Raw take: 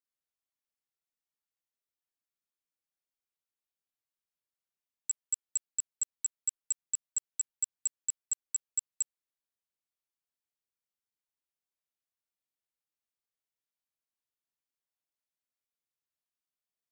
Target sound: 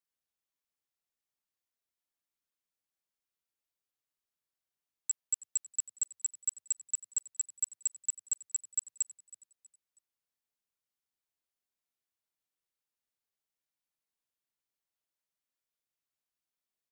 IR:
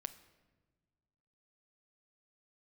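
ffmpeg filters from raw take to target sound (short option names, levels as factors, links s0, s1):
-filter_complex "[0:a]asplit=4[s0][s1][s2][s3];[s1]adelay=321,afreqshift=79,volume=0.106[s4];[s2]adelay=642,afreqshift=158,volume=0.0403[s5];[s3]adelay=963,afreqshift=237,volume=0.0153[s6];[s0][s4][s5][s6]amix=inputs=4:normalize=0"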